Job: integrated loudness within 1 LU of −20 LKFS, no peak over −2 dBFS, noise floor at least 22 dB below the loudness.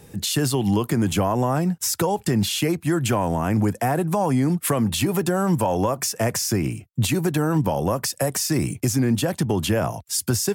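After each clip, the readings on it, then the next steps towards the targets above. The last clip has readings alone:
integrated loudness −22.5 LKFS; sample peak −11.0 dBFS; target loudness −20.0 LKFS
→ level +2.5 dB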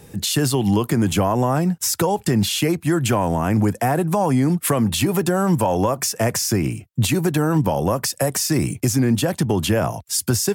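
integrated loudness −20.0 LKFS; sample peak −8.5 dBFS; background noise floor −46 dBFS

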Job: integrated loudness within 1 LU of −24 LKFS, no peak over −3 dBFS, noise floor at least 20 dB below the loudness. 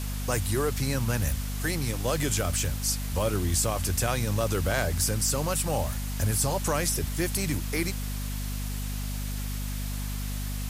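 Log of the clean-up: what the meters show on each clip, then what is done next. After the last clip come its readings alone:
mains hum 50 Hz; hum harmonics up to 250 Hz; level of the hum −30 dBFS; background noise floor −32 dBFS; target noise floor −49 dBFS; integrated loudness −28.5 LKFS; sample peak −11.5 dBFS; target loudness −24.0 LKFS
→ hum removal 50 Hz, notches 5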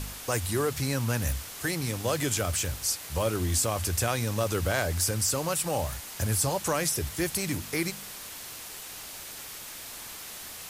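mains hum none found; background noise floor −42 dBFS; target noise floor −50 dBFS
→ broadband denoise 8 dB, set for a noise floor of −42 dBFS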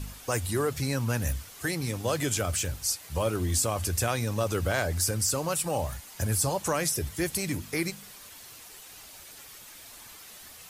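background noise floor −48 dBFS; target noise floor −49 dBFS
→ broadband denoise 6 dB, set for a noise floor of −48 dBFS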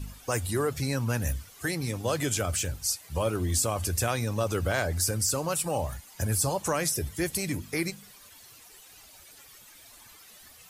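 background noise floor −53 dBFS; integrated loudness −29.0 LKFS; sample peak −12.5 dBFS; target loudness −24.0 LKFS
→ level +5 dB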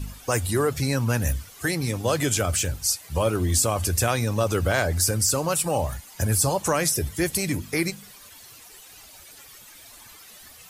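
integrated loudness −24.0 LKFS; sample peak −7.5 dBFS; background noise floor −48 dBFS

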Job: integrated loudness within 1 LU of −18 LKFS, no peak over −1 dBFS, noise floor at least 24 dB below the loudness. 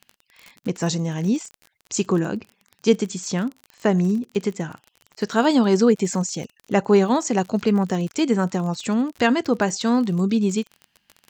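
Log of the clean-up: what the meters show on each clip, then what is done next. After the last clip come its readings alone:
crackle rate 36 per second; integrated loudness −22.0 LKFS; sample peak −3.5 dBFS; target loudness −18.0 LKFS
→ click removal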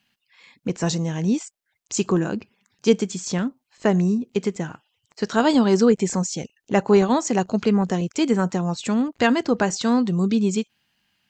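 crackle rate 0.089 per second; integrated loudness −22.0 LKFS; sample peak −3.5 dBFS; target loudness −18.0 LKFS
→ level +4 dB
brickwall limiter −1 dBFS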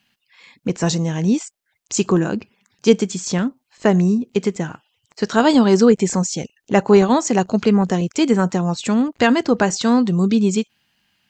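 integrated loudness −18.0 LKFS; sample peak −1.0 dBFS; background noise floor −72 dBFS

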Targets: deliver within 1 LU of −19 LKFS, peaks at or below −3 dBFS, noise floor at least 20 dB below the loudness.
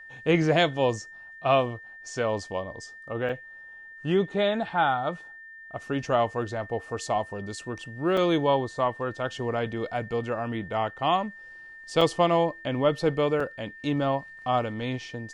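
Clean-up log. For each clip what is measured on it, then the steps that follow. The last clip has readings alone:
number of dropouts 4; longest dropout 4.2 ms; interfering tone 1,800 Hz; level of the tone −43 dBFS; integrated loudness −27.0 LKFS; sample peak −8.5 dBFS; target loudness −19.0 LKFS
→ repair the gap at 0:03.29/0:08.17/0:12.01/0:13.40, 4.2 ms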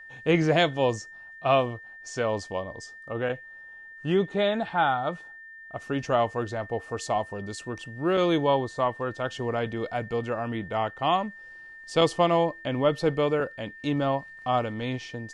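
number of dropouts 0; interfering tone 1,800 Hz; level of the tone −43 dBFS
→ notch filter 1,800 Hz, Q 30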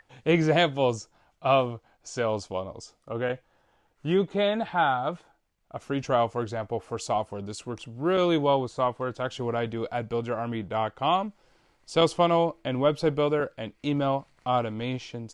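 interfering tone none found; integrated loudness −27.0 LKFS; sample peak −8.5 dBFS; target loudness −19.0 LKFS
→ level +8 dB
brickwall limiter −3 dBFS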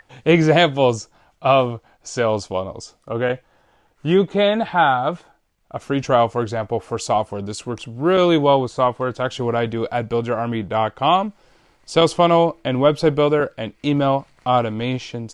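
integrated loudness −19.5 LKFS; sample peak −3.0 dBFS; background noise floor −60 dBFS

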